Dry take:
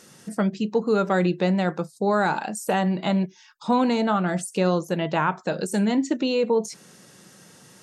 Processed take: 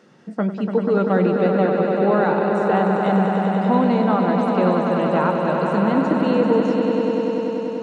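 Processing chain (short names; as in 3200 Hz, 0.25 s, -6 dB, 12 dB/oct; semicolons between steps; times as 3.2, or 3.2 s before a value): HPF 170 Hz; tape spacing loss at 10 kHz 32 dB; swelling echo 97 ms, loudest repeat 5, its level -7.5 dB; gain +3.5 dB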